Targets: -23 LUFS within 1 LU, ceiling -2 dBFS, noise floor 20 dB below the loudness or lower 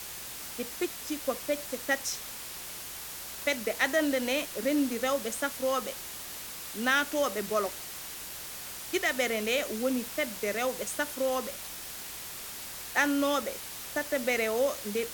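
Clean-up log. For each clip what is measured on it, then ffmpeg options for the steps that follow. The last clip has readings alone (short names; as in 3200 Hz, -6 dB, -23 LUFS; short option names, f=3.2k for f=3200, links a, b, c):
hum 60 Hz; harmonics up to 180 Hz; hum level -61 dBFS; noise floor -41 dBFS; noise floor target -51 dBFS; loudness -31.0 LUFS; peak -11.5 dBFS; loudness target -23.0 LUFS
-> -af "bandreject=f=60:t=h:w=4,bandreject=f=120:t=h:w=4,bandreject=f=180:t=h:w=4"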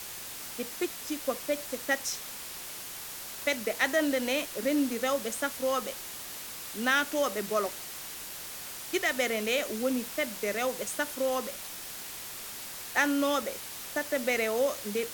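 hum none; noise floor -41 dBFS; noise floor target -51 dBFS
-> -af "afftdn=nr=10:nf=-41"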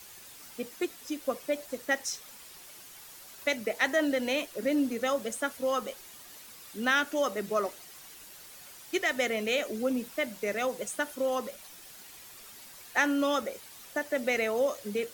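noise floor -50 dBFS; noise floor target -51 dBFS
-> -af "afftdn=nr=6:nf=-50"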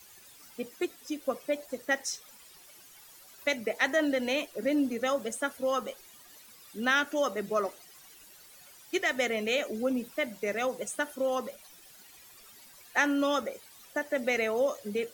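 noise floor -54 dBFS; loudness -30.5 LUFS; peak -11.5 dBFS; loudness target -23.0 LUFS
-> -af "volume=7.5dB"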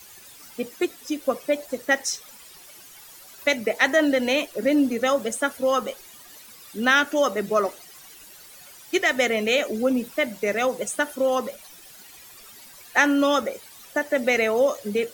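loudness -23.0 LUFS; peak -4.0 dBFS; noise floor -47 dBFS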